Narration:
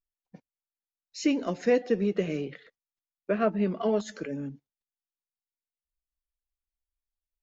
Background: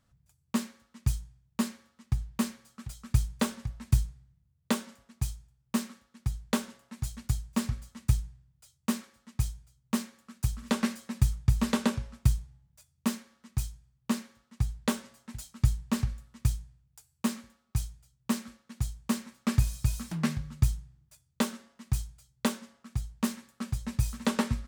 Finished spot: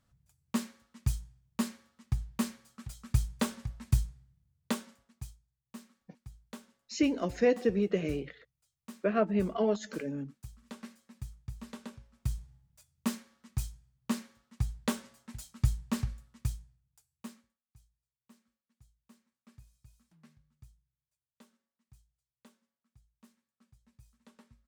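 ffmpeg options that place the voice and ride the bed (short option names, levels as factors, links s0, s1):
-filter_complex "[0:a]adelay=5750,volume=0.794[s0];[1:a]volume=4.22,afade=t=out:st=4.51:d=0.89:silence=0.16788,afade=t=in:st=12.12:d=0.42:silence=0.177828,afade=t=out:st=15.85:d=1.75:silence=0.0375837[s1];[s0][s1]amix=inputs=2:normalize=0"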